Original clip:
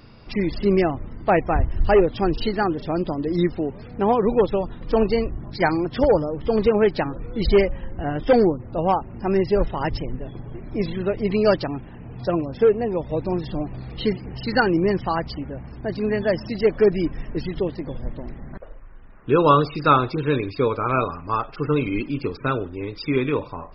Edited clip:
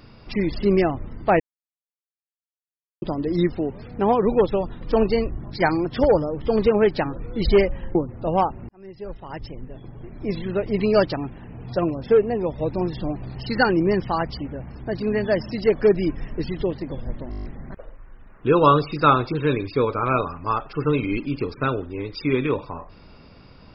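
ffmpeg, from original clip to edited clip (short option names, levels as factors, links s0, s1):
-filter_complex "[0:a]asplit=13[s0][s1][s2][s3][s4][s5][s6][s7][s8][s9][s10][s11][s12];[s0]atrim=end=1.4,asetpts=PTS-STARTPTS,afade=t=out:st=1.396:d=0.004:c=hsin[s13];[s1]atrim=start=1.4:end=3.02,asetpts=PTS-STARTPTS,volume=0[s14];[s2]atrim=start=3.02:end=7.952,asetpts=PTS-STARTPTS,afade=t=in:d=0.004:c=hsin[s15];[s3]atrim=start=8.458:end=9.2,asetpts=PTS-STARTPTS,afade=t=out:st=0.738:d=0.004:c=hsin[s16];[s4]atrim=start=9.2:end=13.862,asetpts=PTS-STARTPTS,afade=t=in:d=2.03[s17];[s5]atrim=start=14.318:end=18.292[s18];[s6]atrim=start=18.268:end=18.292[s19];[s7]atrim=start=18.268:end=18.292[s20];[s8]atrim=start=18.268:end=18.292[s21];[s9]atrim=start=18.268:end=18.292[s22];[s10]atrim=start=18.268:end=18.292[s23];[s11]atrim=start=18.268:end=18.292[s24];[s12]atrim=start=18.268[s25];[s13][s14][s15]concat=n=3:v=0:a=1[s26];[s16][s17]concat=n=2:v=0:a=1[s27];[s26][s27]acrossfade=d=0.004:c1=hsin:c2=hsin[s28];[s28][s18]acrossfade=d=0.004:c1=hsin:c2=hsin[s29];[s29][s19]acrossfade=d=0.004:c1=hsin:c2=hsin[s30];[s30][s20]acrossfade=d=0.004:c1=hsin:c2=hsin[s31];[s31][s21]acrossfade=d=0.004:c1=hsin:c2=hsin[s32];[s32][s22]acrossfade=d=0.004:c1=hsin:c2=hsin[s33];[s33][s23]acrossfade=d=0.004:c1=hsin:c2=hsin[s34];[s34][s24]acrossfade=d=0.004:c1=hsin:c2=hsin[s35];[s35][s25]acrossfade=d=0.004:c1=hsin:c2=hsin"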